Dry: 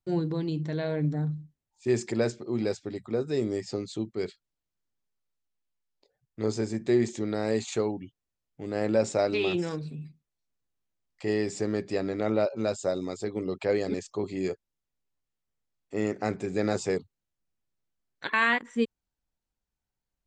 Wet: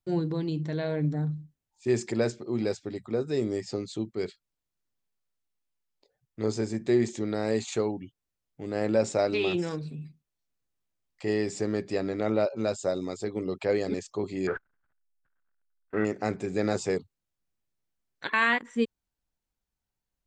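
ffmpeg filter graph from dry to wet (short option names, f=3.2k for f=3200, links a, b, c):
-filter_complex "[0:a]asettb=1/sr,asplit=3[a][b][c];[a]atrim=end=14.474[d];[b]atrim=start=14.47:end=16.05,asetpts=PTS-STARTPTS,afade=t=in:d=0.004:c=qsin,afade=t=out:st=1.576:d=0.004:c=qsin,aeval=exprs='val(0)+0.5*0.0141*sgn(val(0))':c=same,agate=range=-31dB:threshold=-40dB:ratio=16:release=100:detection=peak,lowpass=f=1.5k:t=q:w=7.8[e];[c]atrim=start=16.046[f];[d][e]acrossfade=d=0.004:c1=hsin:c2=qsin[g];[g][f]acrossfade=d=0.004:c1=qsin:c2=hsin"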